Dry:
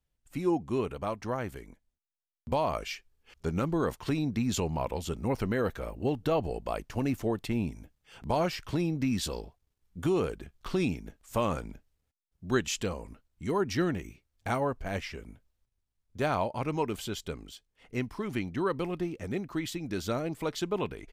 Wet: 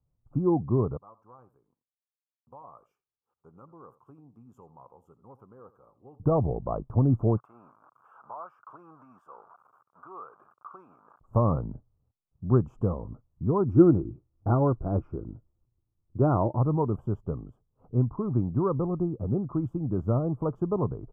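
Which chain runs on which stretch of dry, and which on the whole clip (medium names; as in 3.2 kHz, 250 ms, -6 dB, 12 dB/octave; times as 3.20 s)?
0.97–6.20 s: differentiator + band-stop 630 Hz, Q 7.9 + delay 85 ms -17 dB
7.37–11.21 s: jump at every zero crossing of -40.5 dBFS + resonant high-pass 1.4 kHz, resonance Q 2.6 + compression 2:1, threshold -42 dBFS
13.68–16.57 s: small resonant body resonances 330/1400/2500 Hz, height 12 dB, ringing for 55 ms + tape noise reduction on one side only decoder only
whole clip: elliptic low-pass 1.2 kHz, stop band 40 dB; peaking EQ 120 Hz +13 dB 1.1 oct; trim +2 dB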